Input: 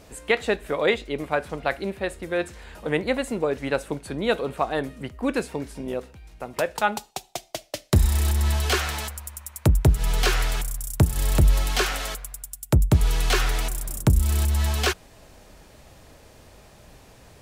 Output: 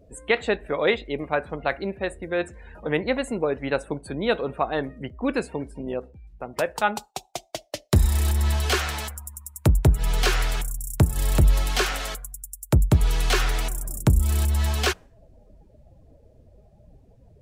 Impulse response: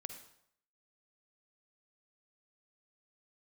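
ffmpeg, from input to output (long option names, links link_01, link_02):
-af "afftdn=noise_reduction=25:noise_floor=-44"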